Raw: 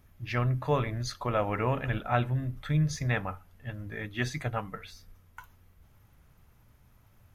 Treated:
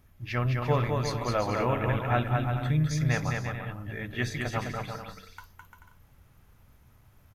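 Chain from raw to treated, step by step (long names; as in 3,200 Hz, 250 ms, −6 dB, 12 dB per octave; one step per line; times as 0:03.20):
bouncing-ball delay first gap 210 ms, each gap 0.65×, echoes 5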